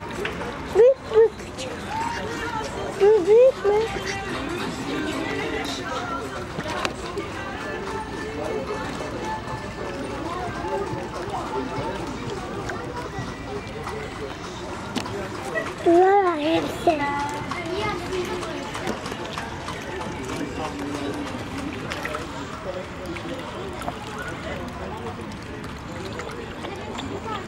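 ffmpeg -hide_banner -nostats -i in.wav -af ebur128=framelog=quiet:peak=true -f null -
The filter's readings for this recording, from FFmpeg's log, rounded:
Integrated loudness:
  I:         -25.8 LUFS
  Threshold: -35.8 LUFS
Loudness range:
  LRA:        10.0 LU
  Threshold: -46.0 LUFS
  LRA low:   -31.5 LUFS
  LRA high:  -21.5 LUFS
True peak:
  Peak:       -4.3 dBFS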